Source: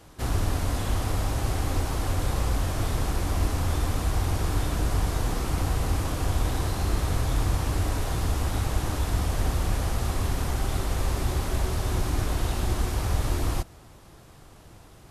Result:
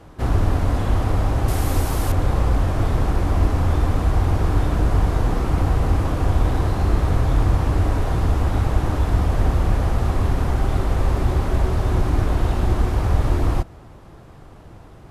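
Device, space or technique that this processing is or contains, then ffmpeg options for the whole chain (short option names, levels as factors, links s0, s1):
through cloth: -filter_complex "[0:a]highshelf=f=3000:g=-15.5,asettb=1/sr,asplit=3[s0][s1][s2];[s0]atrim=end=1.484[s3];[s1]atrim=start=1.48:end=2.12,asetpts=PTS-STARTPTS,afade=t=in:d=0.004:c=qsin,afade=t=out:st=0.636:d=0.004:c=qsin,aemphasis=mode=production:type=75fm[s4];[s2]atrim=start=2.116[s5];[s3][s4]acrossfade=d=0.004:c1=hsin:c2=qsin[s6];[s6][s5]acrossfade=d=0.004:c1=qsin:c2=hsin,volume=2.37"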